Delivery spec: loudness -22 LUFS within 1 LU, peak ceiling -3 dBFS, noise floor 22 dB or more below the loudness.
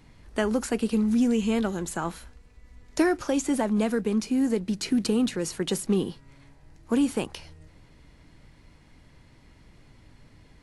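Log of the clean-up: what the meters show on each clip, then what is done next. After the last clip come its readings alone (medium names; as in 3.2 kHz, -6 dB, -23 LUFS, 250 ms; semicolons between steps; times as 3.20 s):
loudness -26.5 LUFS; peak level -11.0 dBFS; loudness target -22.0 LUFS
-> trim +4.5 dB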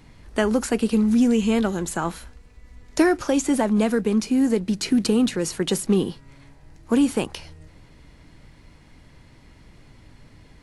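loudness -22.0 LUFS; peak level -6.5 dBFS; noise floor -51 dBFS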